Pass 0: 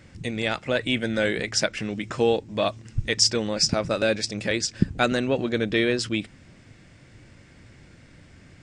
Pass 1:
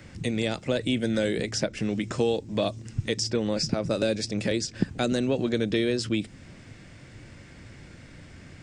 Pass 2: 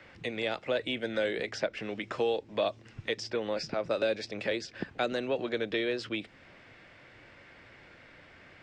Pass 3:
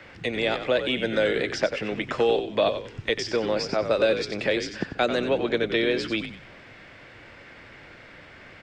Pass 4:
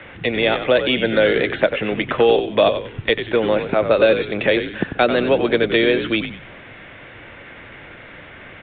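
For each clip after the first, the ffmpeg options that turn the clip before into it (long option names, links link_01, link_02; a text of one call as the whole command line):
ffmpeg -i in.wav -filter_complex "[0:a]acrossover=split=88|590|4100[link_01][link_02][link_03][link_04];[link_01]acompressor=threshold=-50dB:ratio=4[link_05];[link_02]acompressor=threshold=-26dB:ratio=4[link_06];[link_03]acompressor=threshold=-41dB:ratio=4[link_07];[link_04]acompressor=threshold=-37dB:ratio=4[link_08];[link_05][link_06][link_07][link_08]amix=inputs=4:normalize=0,volume=3.5dB" out.wav
ffmpeg -i in.wav -filter_complex "[0:a]acrossover=split=420 3900:gain=0.158 1 0.0794[link_01][link_02][link_03];[link_01][link_02][link_03]amix=inputs=3:normalize=0" out.wav
ffmpeg -i in.wav -filter_complex "[0:a]asplit=5[link_01][link_02][link_03][link_04][link_05];[link_02]adelay=93,afreqshift=-67,volume=-9dB[link_06];[link_03]adelay=186,afreqshift=-134,volume=-18.4dB[link_07];[link_04]adelay=279,afreqshift=-201,volume=-27.7dB[link_08];[link_05]adelay=372,afreqshift=-268,volume=-37.1dB[link_09];[link_01][link_06][link_07][link_08][link_09]amix=inputs=5:normalize=0,volume=7dB" out.wav
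ffmpeg -i in.wav -af "aresample=8000,aresample=44100,volume=7.5dB" out.wav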